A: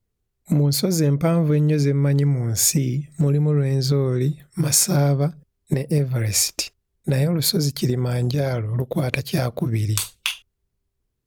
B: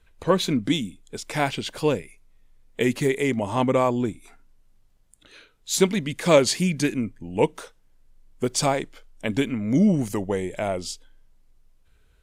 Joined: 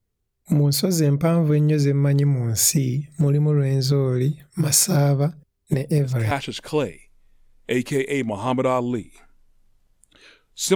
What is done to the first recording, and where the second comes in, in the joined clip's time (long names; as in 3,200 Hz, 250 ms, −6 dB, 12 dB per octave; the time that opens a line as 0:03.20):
A
0:05.71: mix in B from 0:00.81 0.60 s −8 dB
0:06.31: continue with B from 0:01.41